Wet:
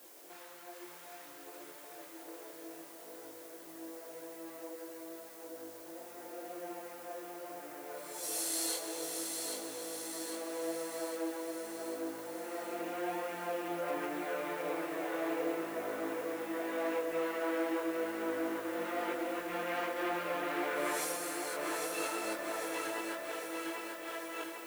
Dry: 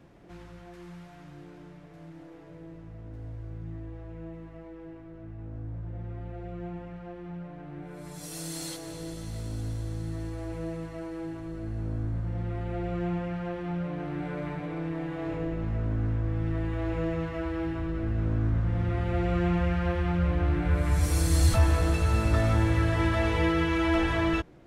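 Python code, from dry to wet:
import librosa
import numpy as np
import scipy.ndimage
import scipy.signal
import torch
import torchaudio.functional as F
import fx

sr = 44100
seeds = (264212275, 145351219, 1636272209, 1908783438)

y = scipy.signal.sosfilt(scipy.signal.butter(4, 370.0, 'highpass', fs=sr, output='sos'), x)
y = fx.high_shelf(y, sr, hz=9500.0, db=11.0)
y = fx.over_compress(y, sr, threshold_db=-35.0, ratio=-0.5)
y = fx.dmg_noise_colour(y, sr, seeds[0], colour='blue', level_db=-54.0)
y = fx.chorus_voices(y, sr, voices=4, hz=0.81, base_ms=23, depth_ms=4.9, mix_pct=45)
y = fx.echo_feedback(y, sr, ms=796, feedback_pct=58, wet_db=-5.0)
y = F.gain(torch.from_numpy(y), 1.0).numpy()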